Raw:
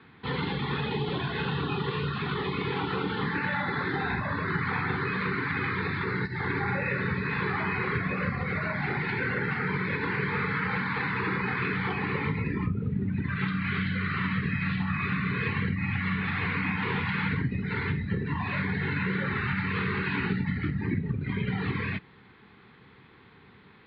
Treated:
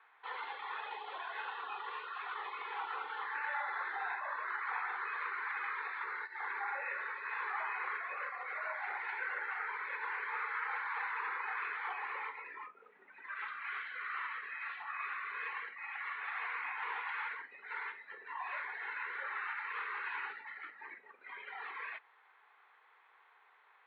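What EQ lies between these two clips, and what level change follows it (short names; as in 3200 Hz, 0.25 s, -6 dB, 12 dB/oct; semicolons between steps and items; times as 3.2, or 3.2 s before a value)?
HPF 670 Hz 24 dB/oct; band-pass 870 Hz, Q 0.5; air absorption 190 m; -4.0 dB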